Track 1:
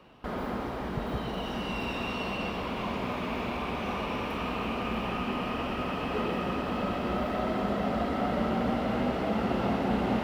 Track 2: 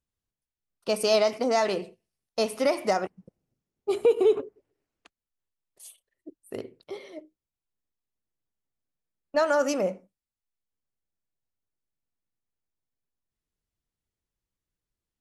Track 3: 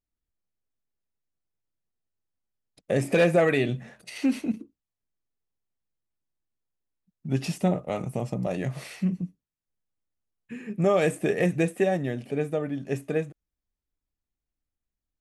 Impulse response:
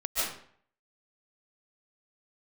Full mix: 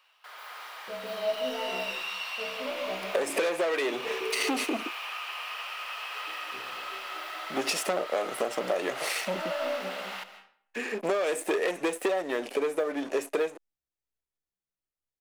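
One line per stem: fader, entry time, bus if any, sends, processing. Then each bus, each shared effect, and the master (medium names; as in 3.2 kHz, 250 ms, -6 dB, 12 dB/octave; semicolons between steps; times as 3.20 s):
-6.0 dB, 0.00 s, bus A, send -19 dB, high-pass 1.2 kHz 12 dB/octave; tilt EQ +2.5 dB/octave
-11.5 dB, 0.00 s, no bus, send -6 dB, low-pass 2.8 kHz 12 dB/octave; feedback comb 64 Hz, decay 0.51 s, harmonics all, mix 100%
-3.5 dB, 0.25 s, bus A, no send, waveshaping leveller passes 3
bus A: 0.0 dB, high-pass 370 Hz 24 dB/octave; compression 10:1, threshold -29 dBFS, peak gain reduction 13.5 dB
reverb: on, RT60 0.55 s, pre-delay 105 ms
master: level rider gain up to 4.5 dB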